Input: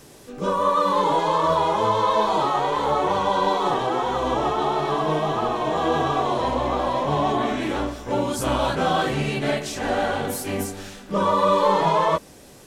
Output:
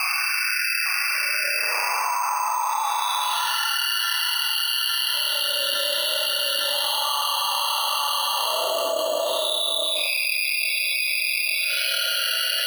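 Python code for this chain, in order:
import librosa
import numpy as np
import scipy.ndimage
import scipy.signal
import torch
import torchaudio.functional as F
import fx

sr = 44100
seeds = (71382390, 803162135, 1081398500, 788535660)

y = fx.spec_dropout(x, sr, seeds[0], share_pct=77)
y = scipy.signal.sosfilt(scipy.signal.butter(4, 1100.0, 'highpass', fs=sr, output='sos'), y)
y = fx.paulstretch(y, sr, seeds[1], factor=18.0, window_s=0.05, from_s=7.97)
y = fx.lowpass_res(y, sr, hz=2700.0, q=6.3)
y = fx.doubler(y, sr, ms=29.0, db=-4.5)
y = fx.echo_feedback(y, sr, ms=858, feedback_pct=52, wet_db=-6.5)
y = np.repeat(scipy.signal.resample_poly(y, 1, 6), 6)[:len(y)]
y = fx.env_flatten(y, sr, amount_pct=100)
y = y * librosa.db_to_amplitude(1.5)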